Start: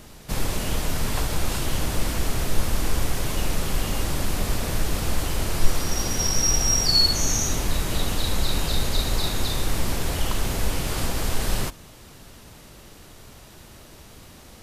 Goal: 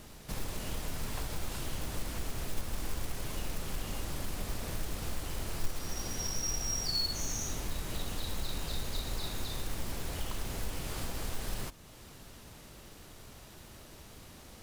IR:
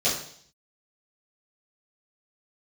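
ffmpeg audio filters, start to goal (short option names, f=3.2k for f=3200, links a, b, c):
-af "acompressor=threshold=-39dB:ratio=1.5,acrusher=bits=4:mode=log:mix=0:aa=0.000001,volume=-5.5dB"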